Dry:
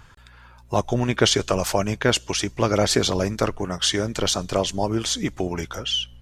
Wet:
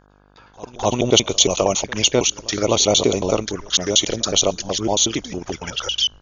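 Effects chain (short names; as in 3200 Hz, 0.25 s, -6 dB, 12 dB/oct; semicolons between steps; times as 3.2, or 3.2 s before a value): slices in reverse order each 92 ms, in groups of 2; gate with hold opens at -34 dBFS; envelope flanger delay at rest 11.4 ms, full sweep at -19.5 dBFS; brick-wall FIR low-pass 7000 Hz; tone controls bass -8 dB, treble +7 dB; buzz 50 Hz, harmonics 33, -60 dBFS -3 dB/oct; reverse echo 0.256 s -22 dB; gain +5.5 dB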